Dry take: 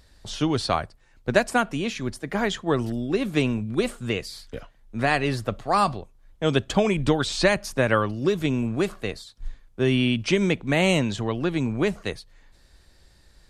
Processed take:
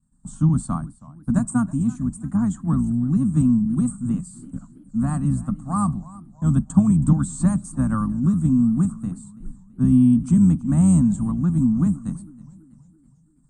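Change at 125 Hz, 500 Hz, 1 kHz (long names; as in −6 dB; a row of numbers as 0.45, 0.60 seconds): +8.0, −18.5, −7.5 decibels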